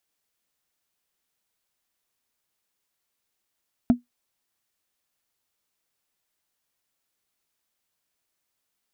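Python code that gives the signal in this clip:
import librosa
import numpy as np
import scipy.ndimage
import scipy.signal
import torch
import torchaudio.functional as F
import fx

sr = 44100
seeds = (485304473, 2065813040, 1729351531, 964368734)

y = fx.strike_wood(sr, length_s=0.45, level_db=-9.0, body='bar', hz=243.0, decay_s=0.14, tilt_db=11.5, modes=5)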